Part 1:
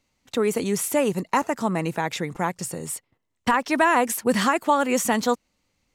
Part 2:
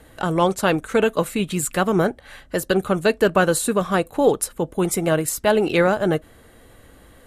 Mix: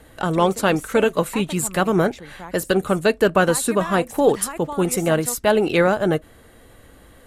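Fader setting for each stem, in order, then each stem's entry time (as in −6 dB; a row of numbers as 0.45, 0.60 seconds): −12.0, +0.5 decibels; 0.00, 0.00 seconds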